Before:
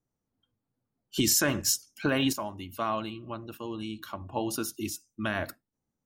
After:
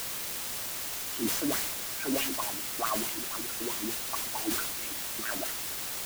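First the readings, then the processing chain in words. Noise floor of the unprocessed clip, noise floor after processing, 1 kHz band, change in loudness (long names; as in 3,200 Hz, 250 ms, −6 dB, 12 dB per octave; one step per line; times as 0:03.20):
below −85 dBFS, −36 dBFS, −1.0 dB, −1.0 dB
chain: notch filter 560 Hz
in parallel at +3 dB: brickwall limiter −24.5 dBFS, peak gain reduction 11.5 dB
on the sum: LFO wah 4.6 Hz 250–2,000 Hz, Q 4.9
bit-depth reduction 6 bits, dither triangular
level that may fall only so fast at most 34 dB per second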